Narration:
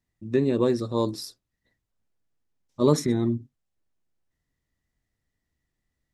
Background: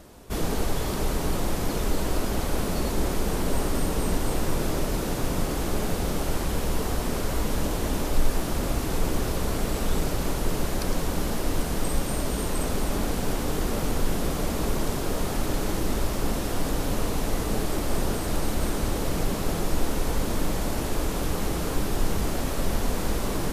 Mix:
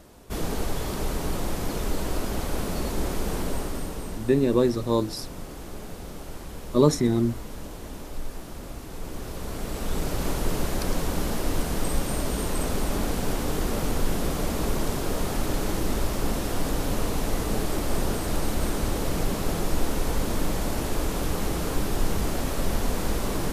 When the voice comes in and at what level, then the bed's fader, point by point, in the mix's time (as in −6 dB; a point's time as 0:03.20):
3.95 s, +1.5 dB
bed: 0:03.39 −2 dB
0:04.33 −11.5 dB
0:08.91 −11.5 dB
0:10.27 0 dB